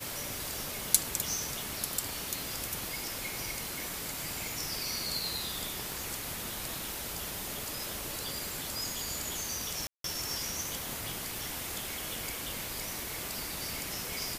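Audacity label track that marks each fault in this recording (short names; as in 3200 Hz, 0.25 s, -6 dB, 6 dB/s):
5.920000	5.920000	pop
9.870000	10.040000	gap 0.173 s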